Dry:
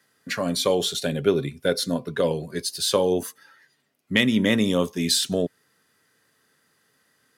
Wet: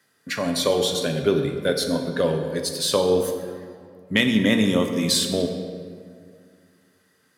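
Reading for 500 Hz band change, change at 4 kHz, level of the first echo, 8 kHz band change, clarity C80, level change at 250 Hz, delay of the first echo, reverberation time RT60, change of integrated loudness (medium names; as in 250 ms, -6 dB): +2.0 dB, +1.0 dB, no echo, +0.5 dB, 7.5 dB, +2.0 dB, no echo, 2.1 s, +1.0 dB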